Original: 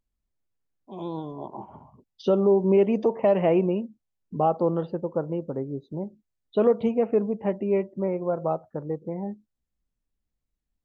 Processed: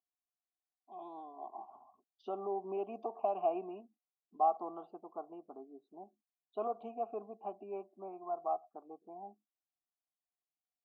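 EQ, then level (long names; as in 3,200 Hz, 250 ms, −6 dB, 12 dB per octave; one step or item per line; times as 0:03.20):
formant filter a
phaser with its sweep stopped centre 530 Hz, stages 6
+1.5 dB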